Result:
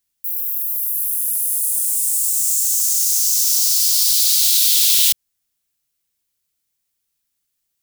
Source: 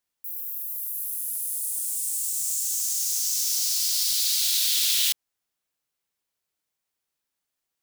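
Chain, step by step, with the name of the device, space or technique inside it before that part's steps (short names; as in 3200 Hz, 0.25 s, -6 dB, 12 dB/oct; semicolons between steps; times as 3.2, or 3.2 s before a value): smiley-face EQ (low shelf 120 Hz +5.5 dB; bell 750 Hz -8.5 dB 2.6 oct; high shelf 6700 Hz +5.5 dB); gain +5.5 dB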